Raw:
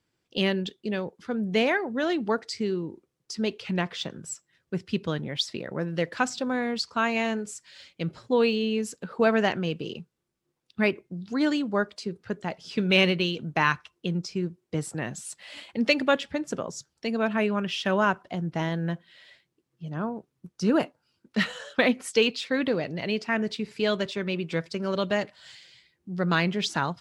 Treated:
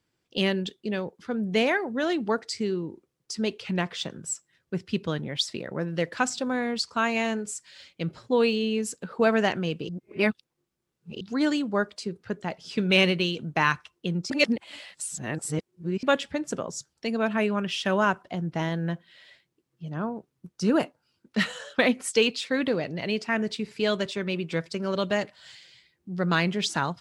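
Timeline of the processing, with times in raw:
9.89–11.21 reverse
14.3–16.03 reverse
whole clip: dynamic EQ 8700 Hz, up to +6 dB, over -51 dBFS, Q 1.3

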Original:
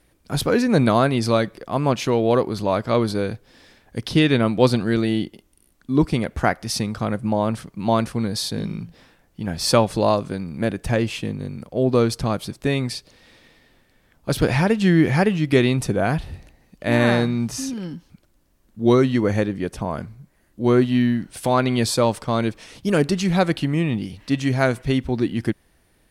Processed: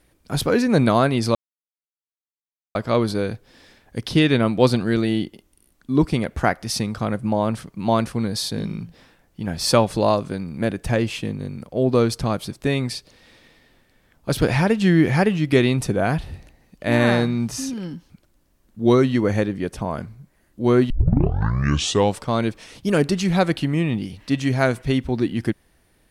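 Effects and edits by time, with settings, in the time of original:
1.35–2.75 mute
20.9 tape start 1.31 s

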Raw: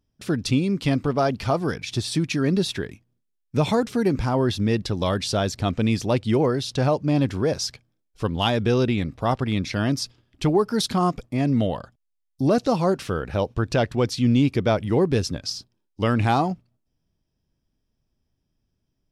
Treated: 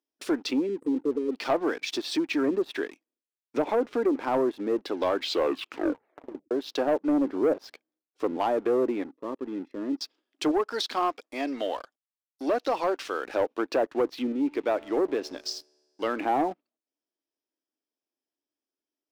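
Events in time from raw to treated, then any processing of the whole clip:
0.67–1.33 spectral delete 530–7700 Hz
5.12 tape stop 1.39 s
7.26–8.38 tilt -2 dB/oct
9.04–10.01 running mean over 59 samples
10.51–13.25 low shelf 420 Hz -11 dB
14.32–16.2 resonator 74 Hz, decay 2 s, mix 40%
whole clip: treble ducked by the level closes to 750 Hz, closed at -16 dBFS; Chebyshev high-pass 290 Hz, order 4; sample leveller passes 2; gain -6 dB

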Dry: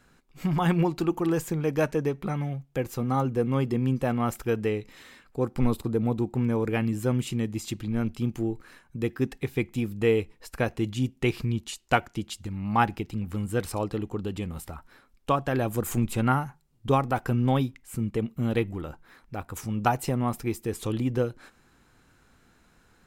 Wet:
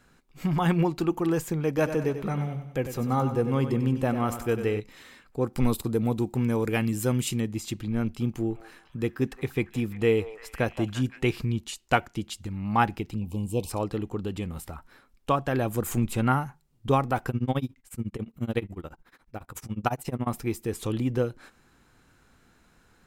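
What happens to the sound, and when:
1.67–4.8 feedback echo 95 ms, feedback 50%, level -10 dB
5.53–7.41 high shelf 3700 Hz +10 dB
8.03–11.36 delay with a stepping band-pass 0.172 s, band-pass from 820 Hz, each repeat 0.7 oct, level -7 dB
13.16–13.7 elliptic band-stop 1000–2500 Hz
17.29–20.27 tremolo 14 Hz, depth 95%

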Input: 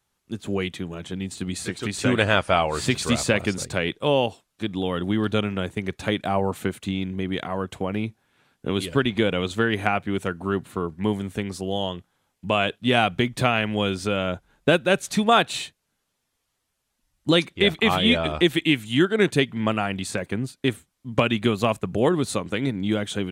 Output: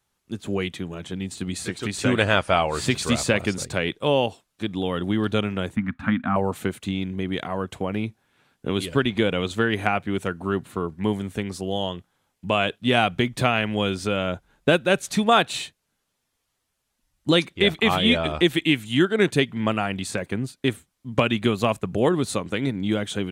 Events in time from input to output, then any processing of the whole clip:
5.76–6.36 EQ curve 170 Hz 0 dB, 250 Hz +14 dB, 400 Hz -26 dB, 590 Hz -11 dB, 1300 Hz +8 dB, 5800 Hz -22 dB

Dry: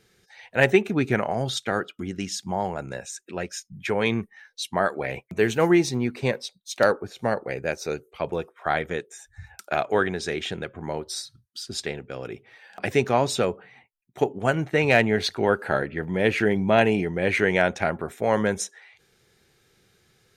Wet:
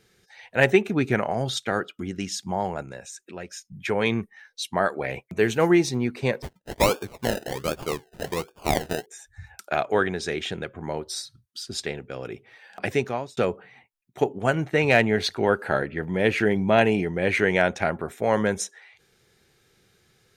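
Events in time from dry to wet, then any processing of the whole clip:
2.82–3.72 compressor 1.5:1, threshold -42 dBFS
6.42–9.06 decimation with a swept rate 31×, swing 60% 1.3 Hz
12.85–13.37 fade out linear

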